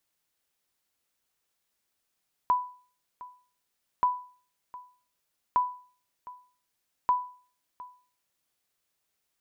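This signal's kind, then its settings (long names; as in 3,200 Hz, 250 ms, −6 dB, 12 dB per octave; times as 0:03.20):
ping with an echo 993 Hz, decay 0.43 s, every 1.53 s, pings 4, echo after 0.71 s, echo −19.5 dB −16.5 dBFS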